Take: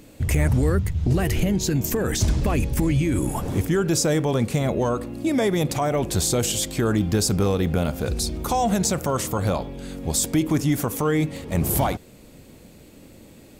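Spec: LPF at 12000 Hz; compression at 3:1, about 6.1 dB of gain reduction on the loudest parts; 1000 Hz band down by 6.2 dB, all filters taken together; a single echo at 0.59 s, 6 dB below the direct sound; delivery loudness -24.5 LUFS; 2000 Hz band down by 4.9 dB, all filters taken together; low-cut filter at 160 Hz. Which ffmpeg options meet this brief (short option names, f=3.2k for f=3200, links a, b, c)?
-af "highpass=160,lowpass=12k,equalizer=f=1k:t=o:g=-8.5,equalizer=f=2k:t=o:g=-3.5,acompressor=threshold=-27dB:ratio=3,aecho=1:1:590:0.501,volume=5dB"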